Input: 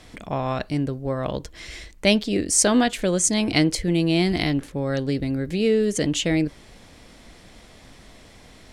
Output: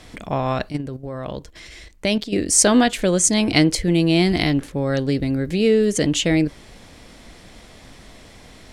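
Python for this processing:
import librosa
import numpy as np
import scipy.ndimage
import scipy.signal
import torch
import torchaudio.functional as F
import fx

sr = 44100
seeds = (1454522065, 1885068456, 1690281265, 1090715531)

y = fx.level_steps(x, sr, step_db=11, at=(0.69, 2.41))
y = y * librosa.db_to_amplitude(3.5)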